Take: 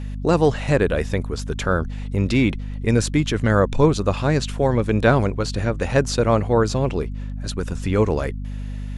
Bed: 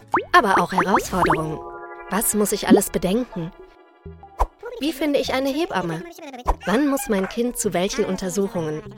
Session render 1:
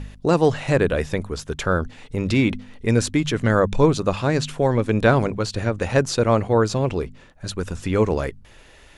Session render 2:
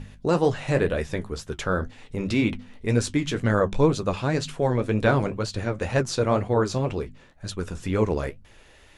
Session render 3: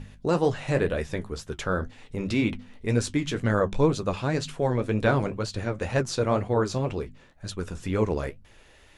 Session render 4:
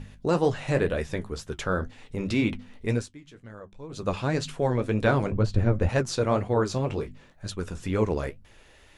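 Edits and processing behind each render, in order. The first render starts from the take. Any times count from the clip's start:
de-hum 50 Hz, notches 5
flange 2 Hz, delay 7.8 ms, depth 8.6 ms, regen -49%
trim -2 dB
2.90–4.08 s: dip -20.5 dB, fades 0.19 s; 5.32–5.89 s: tilt EQ -3 dB/octave; 6.88–7.47 s: doubling 20 ms -7 dB

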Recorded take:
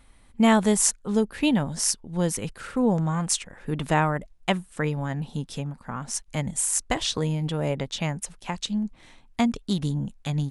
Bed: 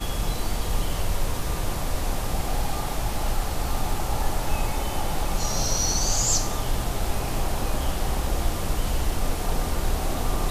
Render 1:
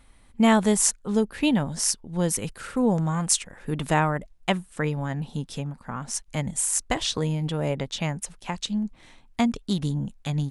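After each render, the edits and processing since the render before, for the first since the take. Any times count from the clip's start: 2.30–3.99 s: treble shelf 7.6 kHz +6.5 dB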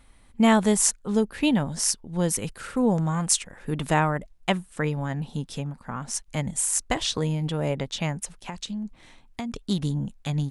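8.39–9.53 s: compression 5:1, threshold -29 dBFS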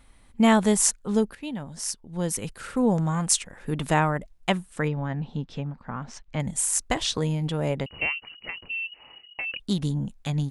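1.35–2.79 s: fade in, from -15.5 dB; 4.88–6.40 s: distance through air 190 m; 7.86–9.60 s: frequency inversion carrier 2.9 kHz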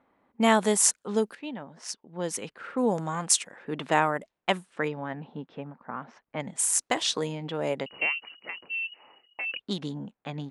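high-pass 290 Hz 12 dB/octave; level-controlled noise filter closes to 1.1 kHz, open at -23 dBFS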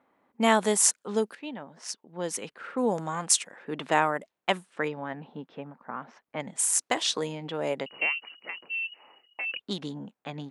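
high-pass 180 Hz 6 dB/octave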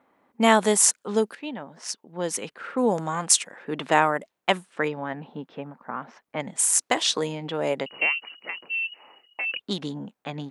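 trim +4 dB; peak limiter -2 dBFS, peak gain reduction 3 dB

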